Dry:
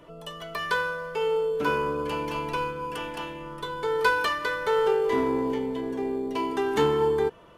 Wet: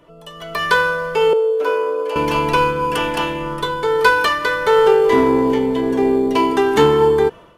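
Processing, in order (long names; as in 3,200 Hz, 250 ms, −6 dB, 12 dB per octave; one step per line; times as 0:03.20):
automatic gain control gain up to 15 dB
0:01.33–0:02.16: four-pole ladder high-pass 410 Hz, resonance 55%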